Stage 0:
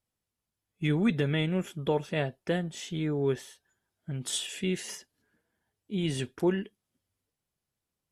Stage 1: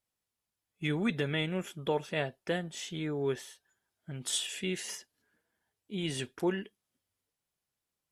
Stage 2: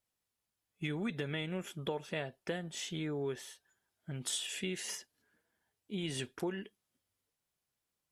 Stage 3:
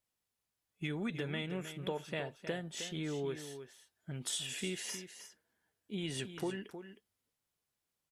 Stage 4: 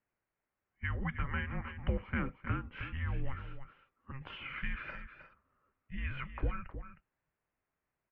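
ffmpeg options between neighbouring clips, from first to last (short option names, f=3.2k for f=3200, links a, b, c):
-af "lowshelf=f=380:g=-7.5"
-af "acompressor=threshold=-34dB:ratio=4"
-af "aecho=1:1:313:0.299,volume=-1dB"
-af "highpass=f=270:t=q:w=0.5412,highpass=f=270:t=q:w=1.307,lowpass=f=2.6k:t=q:w=0.5176,lowpass=f=2.6k:t=q:w=0.7071,lowpass=f=2.6k:t=q:w=1.932,afreqshift=-400,volume=6dB"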